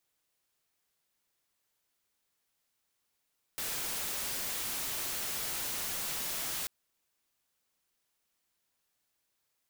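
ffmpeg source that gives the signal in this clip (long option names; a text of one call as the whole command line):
ffmpeg -f lavfi -i "anoisesrc=color=white:amplitude=0.0274:duration=3.09:sample_rate=44100:seed=1" out.wav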